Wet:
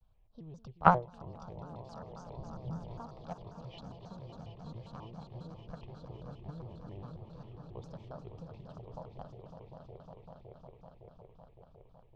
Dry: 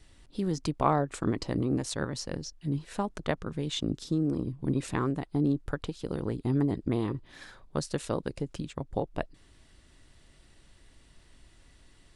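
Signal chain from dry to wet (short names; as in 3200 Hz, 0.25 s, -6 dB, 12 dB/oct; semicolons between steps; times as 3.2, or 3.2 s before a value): air absorption 270 m; in parallel at 0 dB: compressor 16:1, threshold -30 dBFS, peak gain reduction 11.5 dB; on the sum: swelling echo 0.186 s, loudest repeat 5, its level -10 dB; low-pass opened by the level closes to 2500 Hz, open at -17.5 dBFS; fixed phaser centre 730 Hz, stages 4; gate -21 dBFS, range -29 dB; 2.37–2.99 low shelf 250 Hz +8.5 dB; shaped vibrato square 3.7 Hz, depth 250 cents; gain +12.5 dB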